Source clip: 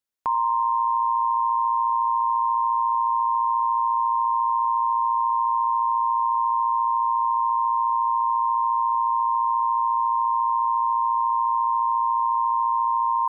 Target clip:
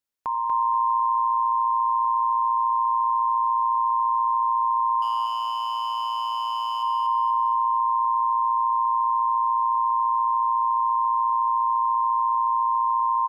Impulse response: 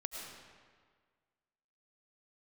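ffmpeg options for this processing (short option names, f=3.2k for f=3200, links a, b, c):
-filter_complex "[0:a]alimiter=limit=-19.5dB:level=0:latency=1:release=455,asettb=1/sr,asplit=3[a][b][c];[a]atrim=end=5.024[d];[b]atrim=start=5.02:end=6.83,asetpts=PTS-STARTPTS,afade=t=in:d=0.004:c=qsin,afade=t=out:st=1.806:d=0.004:c=qsin,asoftclip=type=hard:threshold=-28dB[e];[c]atrim=start=6.826[f];[d][e]acrossfade=d=0.004:c1=hsin:c2=qsin[g];[g][f]acrossfade=d=0.004:c1=qsin:c2=hsin,aecho=1:1:239|478|717|956|1195:0.668|0.254|0.0965|0.0367|0.0139"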